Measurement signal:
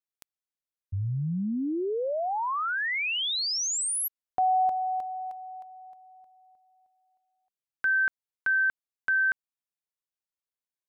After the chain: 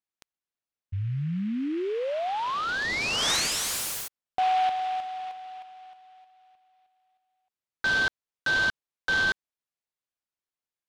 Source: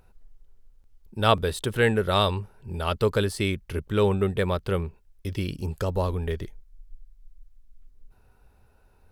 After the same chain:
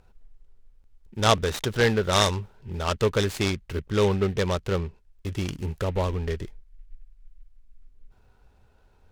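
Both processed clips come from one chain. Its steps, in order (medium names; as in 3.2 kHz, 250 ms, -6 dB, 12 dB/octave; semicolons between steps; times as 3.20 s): low-pass 10 kHz 12 dB/octave; dynamic bell 3.7 kHz, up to +5 dB, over -45 dBFS, Q 2.5; delay time shaken by noise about 2 kHz, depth 0.039 ms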